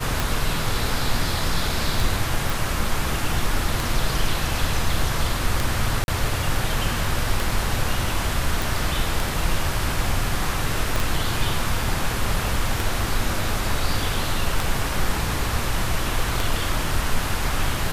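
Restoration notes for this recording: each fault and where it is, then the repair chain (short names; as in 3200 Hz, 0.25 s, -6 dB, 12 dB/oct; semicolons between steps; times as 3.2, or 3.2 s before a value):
tick 33 1/3 rpm
2.5 pop
6.04–6.08 gap 41 ms
8.62 pop
10.96 pop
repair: de-click; interpolate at 6.04, 41 ms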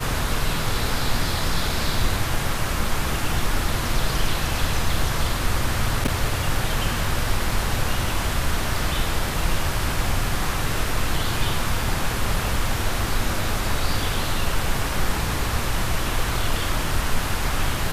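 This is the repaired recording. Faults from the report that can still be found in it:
10.96 pop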